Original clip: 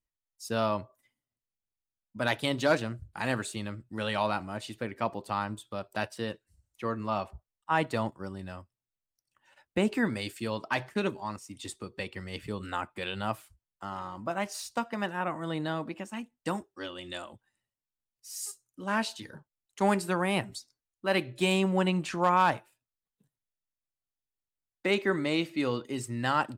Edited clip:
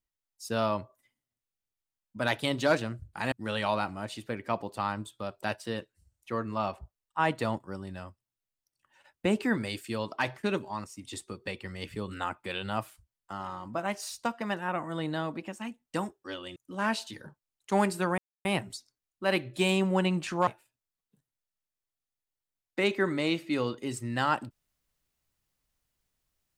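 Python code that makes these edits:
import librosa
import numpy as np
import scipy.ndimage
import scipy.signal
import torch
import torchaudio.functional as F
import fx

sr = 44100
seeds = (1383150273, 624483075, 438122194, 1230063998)

y = fx.edit(x, sr, fx.cut(start_s=3.32, length_s=0.52),
    fx.cut(start_s=17.08, length_s=1.57),
    fx.insert_silence(at_s=20.27, length_s=0.27),
    fx.cut(start_s=22.29, length_s=0.25), tone=tone)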